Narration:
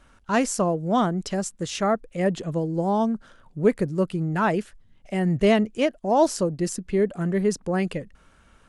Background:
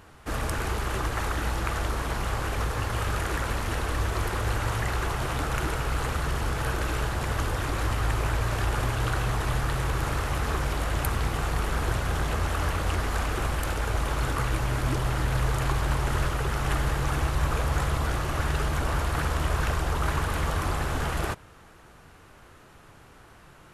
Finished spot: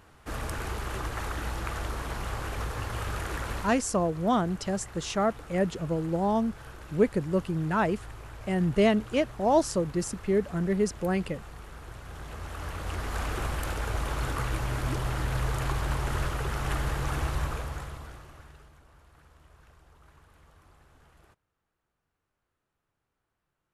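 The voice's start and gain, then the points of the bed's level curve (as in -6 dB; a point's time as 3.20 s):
3.35 s, -3.5 dB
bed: 3.60 s -5 dB
3.82 s -17.5 dB
11.90 s -17.5 dB
13.26 s -3.5 dB
17.36 s -3.5 dB
18.85 s -31 dB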